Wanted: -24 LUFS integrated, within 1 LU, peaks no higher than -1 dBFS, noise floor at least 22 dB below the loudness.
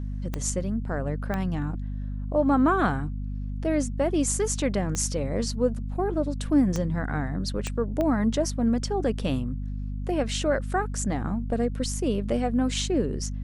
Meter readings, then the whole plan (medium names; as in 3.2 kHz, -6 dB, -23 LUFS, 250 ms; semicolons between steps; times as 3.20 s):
clicks found 6; hum 50 Hz; highest harmonic 250 Hz; hum level -29 dBFS; loudness -27.0 LUFS; peak level -10.0 dBFS; loudness target -24.0 LUFS
-> de-click; hum notches 50/100/150/200/250 Hz; trim +3 dB